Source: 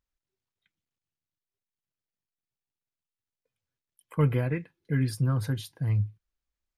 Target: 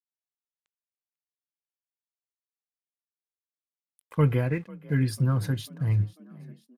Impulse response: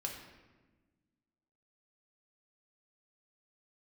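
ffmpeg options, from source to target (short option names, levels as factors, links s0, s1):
-filter_complex "[0:a]aeval=exprs='sgn(val(0))*max(abs(val(0))-0.00141,0)':c=same,asplit=5[s0][s1][s2][s3][s4];[s1]adelay=495,afreqshift=39,volume=0.0794[s5];[s2]adelay=990,afreqshift=78,volume=0.0427[s6];[s3]adelay=1485,afreqshift=117,volume=0.0232[s7];[s4]adelay=1980,afreqshift=156,volume=0.0124[s8];[s0][s5][s6][s7][s8]amix=inputs=5:normalize=0,volume=1.26"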